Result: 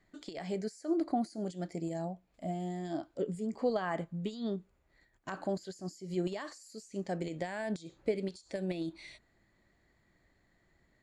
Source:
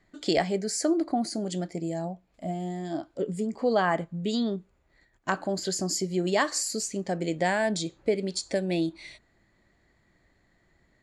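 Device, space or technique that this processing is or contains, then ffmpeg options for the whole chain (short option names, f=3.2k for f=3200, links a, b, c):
de-esser from a sidechain: -filter_complex "[0:a]asplit=2[a][b];[b]highpass=5k,apad=whole_len=486273[c];[a][c]sidechaincompress=threshold=-49dB:ratio=12:attack=4.3:release=79,volume=-4.5dB"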